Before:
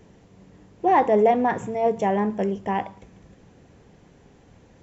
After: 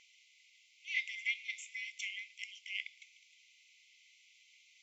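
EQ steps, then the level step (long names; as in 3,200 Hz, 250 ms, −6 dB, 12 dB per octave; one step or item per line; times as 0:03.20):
linear-phase brick-wall high-pass 2,000 Hz
high-frequency loss of the air 83 metres
+6.0 dB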